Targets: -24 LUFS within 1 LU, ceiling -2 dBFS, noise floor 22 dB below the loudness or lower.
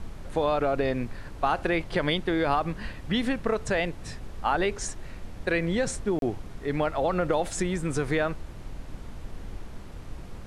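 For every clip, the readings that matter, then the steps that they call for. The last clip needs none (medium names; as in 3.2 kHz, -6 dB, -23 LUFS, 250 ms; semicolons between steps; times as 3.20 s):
dropouts 1; longest dropout 32 ms; noise floor -42 dBFS; noise floor target -50 dBFS; loudness -28.0 LUFS; peak level -11.0 dBFS; loudness target -24.0 LUFS
-> interpolate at 6.19 s, 32 ms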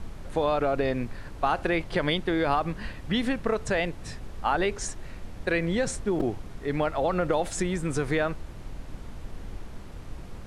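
dropouts 0; noise floor -42 dBFS; noise floor target -50 dBFS
-> noise print and reduce 8 dB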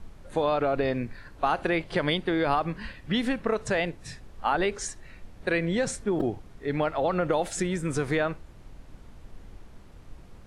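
noise floor -49 dBFS; noise floor target -50 dBFS
-> noise print and reduce 6 dB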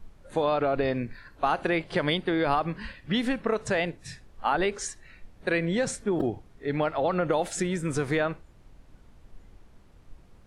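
noise floor -54 dBFS; loudness -28.0 LUFS; peak level -11.5 dBFS; loudness target -24.0 LUFS
-> trim +4 dB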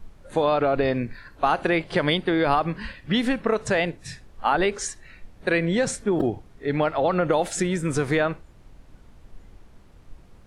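loudness -24.0 LUFS; peak level -7.5 dBFS; noise floor -50 dBFS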